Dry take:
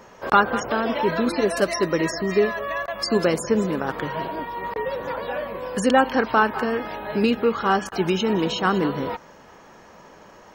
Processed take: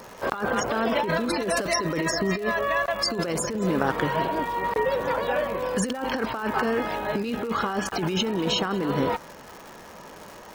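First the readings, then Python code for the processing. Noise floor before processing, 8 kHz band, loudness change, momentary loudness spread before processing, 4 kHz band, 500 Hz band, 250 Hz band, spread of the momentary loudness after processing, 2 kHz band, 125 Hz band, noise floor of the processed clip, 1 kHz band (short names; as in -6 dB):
-48 dBFS, +2.5 dB, -3.0 dB, 10 LU, +1.0 dB, -3.5 dB, -3.5 dB, 9 LU, -2.0 dB, -0.5 dB, -45 dBFS, -3.5 dB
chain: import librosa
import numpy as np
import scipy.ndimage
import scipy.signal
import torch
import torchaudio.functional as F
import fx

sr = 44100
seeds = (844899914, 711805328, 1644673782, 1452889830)

y = fx.over_compress(x, sr, threshold_db=-25.0, ratio=-1.0)
y = fx.dmg_crackle(y, sr, seeds[0], per_s=250.0, level_db=-34.0)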